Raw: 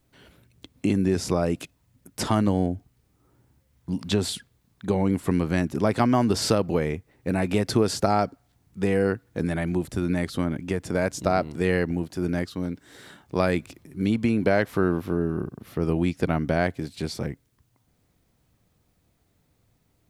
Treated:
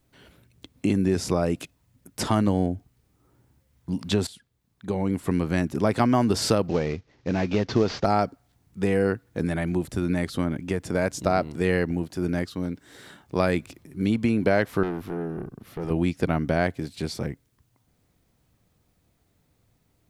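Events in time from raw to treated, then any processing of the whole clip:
0:04.27–0:05.90: fade in equal-power, from −17 dB
0:06.68–0:08.05: variable-slope delta modulation 32 kbit/s
0:14.83–0:15.91: tube saturation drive 23 dB, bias 0.45

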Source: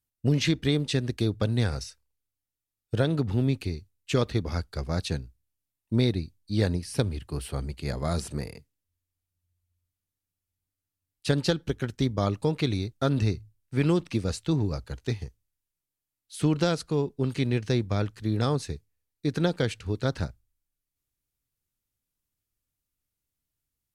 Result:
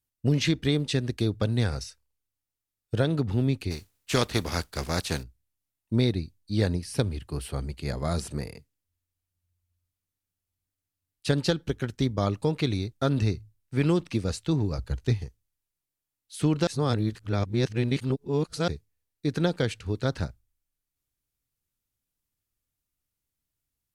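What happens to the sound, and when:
0:03.70–0:05.22: compressing power law on the bin magnitudes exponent 0.62
0:14.78–0:15.22: low-shelf EQ 140 Hz +10 dB
0:16.67–0:18.68: reverse

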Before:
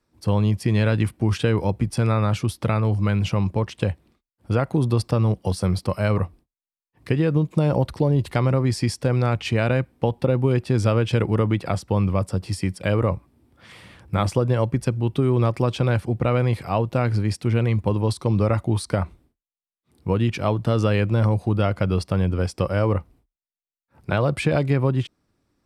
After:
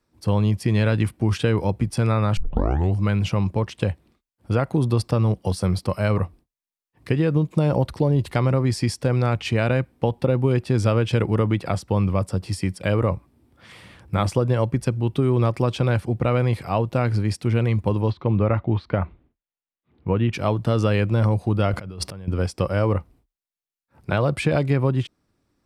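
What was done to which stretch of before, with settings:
0:02.37: tape start 0.58 s
0:18.10–0:20.33: low-pass filter 3,100 Hz 24 dB per octave
0:21.73–0:22.28: compressor whose output falls as the input rises −33 dBFS

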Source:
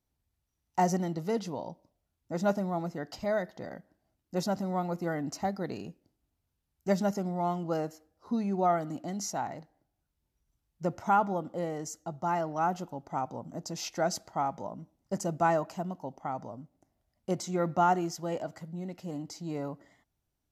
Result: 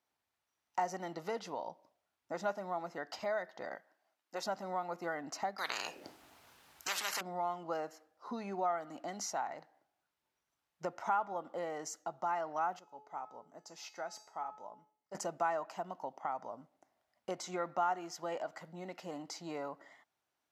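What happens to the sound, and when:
0:03.75–0:04.44: high-pass filter 640 Hz 6 dB per octave
0:05.58–0:07.21: every bin compressed towards the loudest bin 10 to 1
0:12.79–0:15.15: tuned comb filter 430 Hz, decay 0.49 s, mix 80%
whole clip: high-pass filter 1,100 Hz 12 dB per octave; spectral tilt −4 dB per octave; downward compressor 2 to 1, threshold −50 dBFS; level +10 dB

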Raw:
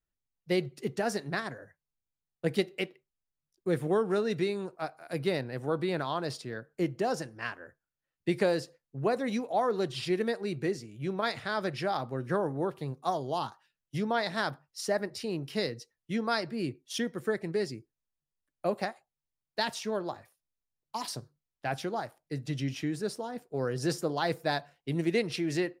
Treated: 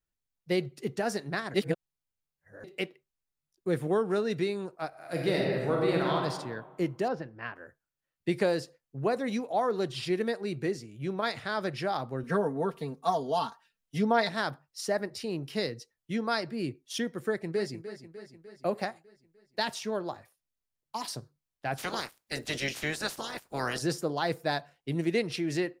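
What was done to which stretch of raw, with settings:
0:01.54–0:02.64: reverse
0:04.88–0:06.14: thrown reverb, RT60 1.4 s, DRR −2 dB
0:07.08–0:07.56: high-frequency loss of the air 340 metres
0:12.23–0:14.29: comb filter 4.4 ms, depth 83%
0:17.26–0:17.77: delay throw 300 ms, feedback 60%, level −12 dB
0:21.77–0:23.81: ceiling on every frequency bin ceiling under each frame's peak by 27 dB

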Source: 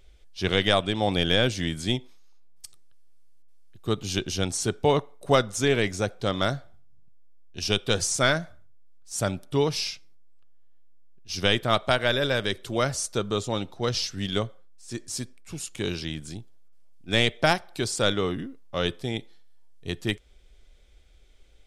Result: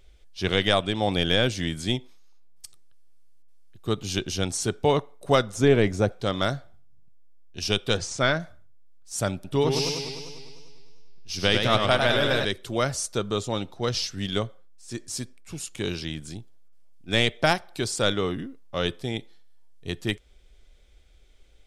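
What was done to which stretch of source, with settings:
0:05.54–0:06.12: tilt shelving filter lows +5.5 dB, about 1,400 Hz
0:07.97–0:08.40: high-frequency loss of the air 100 metres
0:09.34–0:12.45: feedback echo with a swinging delay time 100 ms, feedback 68%, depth 113 cents, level −5 dB

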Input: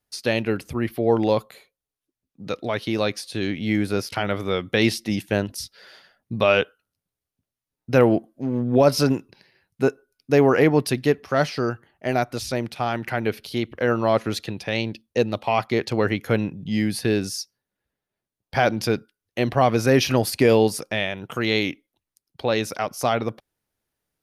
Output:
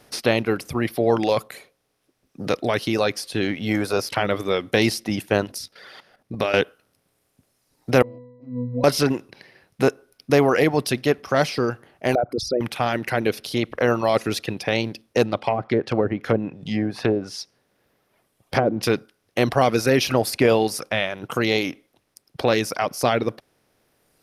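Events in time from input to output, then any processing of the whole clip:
0:05.58–0:06.54: output level in coarse steps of 13 dB
0:08.02–0:08.84: resonances in every octave B, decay 0.75 s
0:12.15–0:12.61: spectral envelope exaggerated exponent 3
0:15.24–0:18.83: treble cut that deepens with the level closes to 570 Hz, closed at −16.5 dBFS
whole clip: compressor on every frequency bin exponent 0.6; reverb reduction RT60 2 s; level −1.5 dB

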